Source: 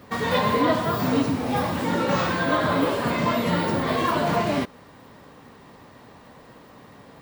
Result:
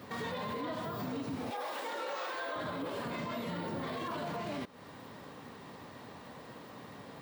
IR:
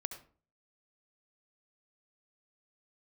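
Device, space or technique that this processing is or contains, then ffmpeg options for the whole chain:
broadcast voice chain: -filter_complex "[0:a]asettb=1/sr,asplit=3[link_01][link_02][link_03];[link_01]atrim=end=1.504[link_04];[link_02]atrim=start=1.5:end=2.56,asetpts=PTS-STARTPTS,afade=type=in:duration=0.004:curve=qsin,afade=type=out:start_time=1.056:duration=0.004:curve=qsin,highpass=frequency=430:width=0.5412,highpass=frequency=430:width=1.3066[link_05];[link_03]atrim=start=2.556[link_06];[link_04][link_05]acrossfade=duration=0.004:curve1=hsin:curve2=qsin[link_07];[link_07][link_06]acrossfade=duration=0.004:curve1=qsin:curve2=hsin,highpass=84,deesser=0.6,acompressor=threshold=-34dB:ratio=4,equalizer=frequency=3700:width_type=o:width=0.77:gain=2,alimiter=level_in=4.5dB:limit=-24dB:level=0:latency=1:release=14,volume=-4.5dB,volume=-1.5dB"

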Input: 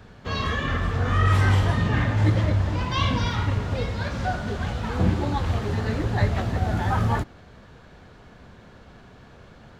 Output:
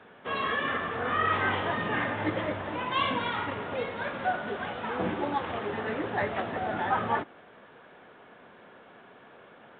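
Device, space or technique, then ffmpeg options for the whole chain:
telephone: -af "highpass=340,lowpass=3400" -ar 8000 -c:a pcm_mulaw

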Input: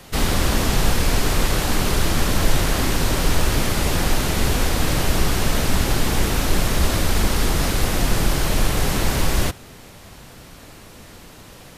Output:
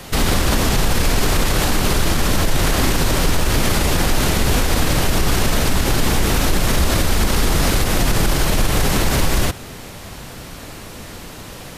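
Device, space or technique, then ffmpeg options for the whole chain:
stacked limiters: -af "alimiter=limit=-9dB:level=0:latency=1:release=145,alimiter=limit=-15dB:level=0:latency=1:release=55,volume=8dB"

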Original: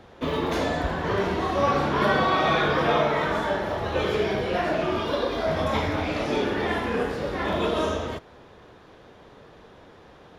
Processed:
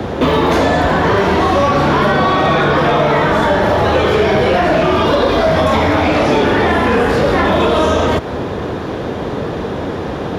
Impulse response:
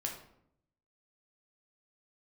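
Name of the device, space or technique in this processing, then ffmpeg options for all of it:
mastering chain: -filter_complex "[0:a]highpass=56,equalizer=frequency=270:width_type=o:width=0.77:gain=2,acrossover=split=150|610|1800[link_01][link_02][link_03][link_04];[link_01]acompressor=threshold=-44dB:ratio=4[link_05];[link_02]acompressor=threshold=-39dB:ratio=4[link_06];[link_03]acompressor=threshold=-32dB:ratio=4[link_07];[link_04]acompressor=threshold=-39dB:ratio=4[link_08];[link_05][link_06][link_07][link_08]amix=inputs=4:normalize=0,acompressor=threshold=-36dB:ratio=1.5,asoftclip=type=tanh:threshold=-25.5dB,tiltshelf=frequency=780:gain=4,asoftclip=type=hard:threshold=-28dB,alimiter=level_in=31.5dB:limit=-1dB:release=50:level=0:latency=1,volume=-5dB"

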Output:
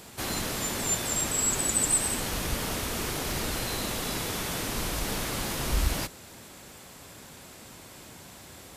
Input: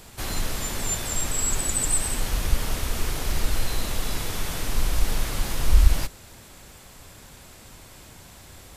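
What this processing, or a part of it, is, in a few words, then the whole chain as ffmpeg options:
filter by subtraction: -filter_complex "[0:a]asplit=2[link_01][link_02];[link_02]lowpass=230,volume=-1[link_03];[link_01][link_03]amix=inputs=2:normalize=0"

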